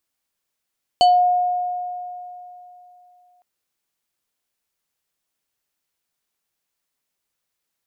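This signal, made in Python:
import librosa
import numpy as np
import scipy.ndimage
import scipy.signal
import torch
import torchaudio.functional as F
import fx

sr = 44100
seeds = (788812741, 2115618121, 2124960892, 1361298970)

y = fx.fm2(sr, length_s=2.41, level_db=-9, carrier_hz=719.0, ratio=5.2, index=0.7, index_s=0.27, decay_s=3.11, shape='exponential')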